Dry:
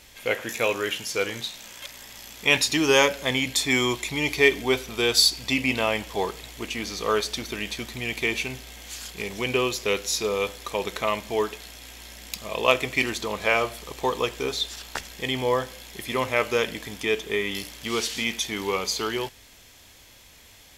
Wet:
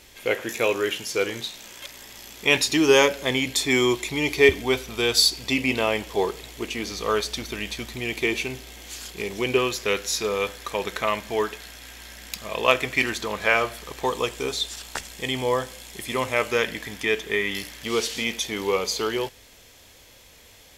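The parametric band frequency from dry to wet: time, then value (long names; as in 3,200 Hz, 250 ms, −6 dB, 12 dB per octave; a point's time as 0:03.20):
parametric band +6 dB 0.58 octaves
370 Hz
from 0:04.49 80 Hz
from 0:05.16 390 Hz
from 0:06.92 73 Hz
from 0:07.95 360 Hz
from 0:09.58 1,600 Hz
from 0:14.06 8,400 Hz
from 0:16.51 1,800 Hz
from 0:17.84 490 Hz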